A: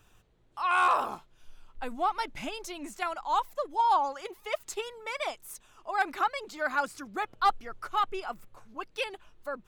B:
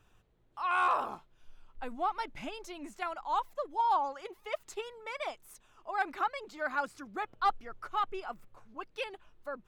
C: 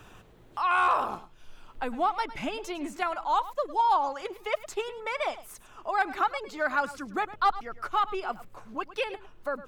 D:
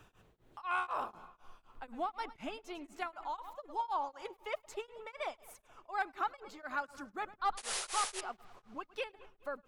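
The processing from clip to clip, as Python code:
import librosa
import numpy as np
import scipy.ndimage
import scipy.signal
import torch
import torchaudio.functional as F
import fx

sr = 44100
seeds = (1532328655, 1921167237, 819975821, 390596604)

y1 = fx.high_shelf(x, sr, hz=4500.0, db=-8.0)
y1 = y1 * librosa.db_to_amplitude(-3.5)
y2 = y1 + 10.0 ** (-16.5 / 20.0) * np.pad(y1, (int(105 * sr / 1000.0), 0))[:len(y1)]
y2 = fx.band_squash(y2, sr, depth_pct=40)
y2 = y2 * librosa.db_to_amplitude(6.0)
y3 = fx.spec_paint(y2, sr, seeds[0], shape='noise', start_s=7.57, length_s=0.64, low_hz=370.0, high_hz=11000.0, level_db=-28.0)
y3 = fx.echo_wet_lowpass(y3, sr, ms=211, feedback_pct=55, hz=3200.0, wet_db=-21)
y3 = y3 * np.abs(np.cos(np.pi * 4.0 * np.arange(len(y3)) / sr))
y3 = y3 * librosa.db_to_amplitude(-8.5)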